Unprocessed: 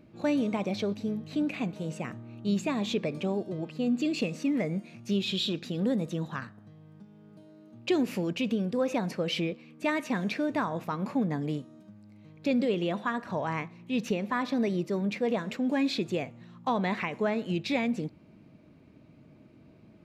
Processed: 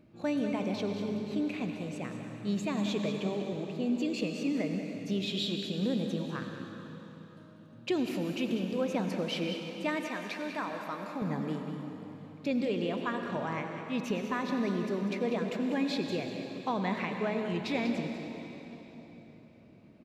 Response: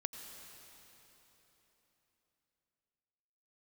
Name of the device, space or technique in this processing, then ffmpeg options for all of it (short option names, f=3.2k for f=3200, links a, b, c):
cave: -filter_complex "[0:a]aecho=1:1:194:0.316[a];[1:a]atrim=start_sample=2205[b];[a][b]afir=irnorm=-1:irlink=0,asettb=1/sr,asplit=3[c][d][e];[c]atrim=end=10.084[f];[d]atrim=start=10.08:end=11.22,asetpts=PTS-STARTPTS,afade=t=in:d=0.004:c=qsin,afade=t=out:st=1.136:d=0.004:c=qsin,highpass=f=550:p=1[g];[e]atrim=start=11.216[h];[f][g]acrossfade=d=0.004:c1=hsin:c2=qsin[i];[i][h]acrossfade=d=0.004:c1=qsin:c2=hsin,volume=-2dB"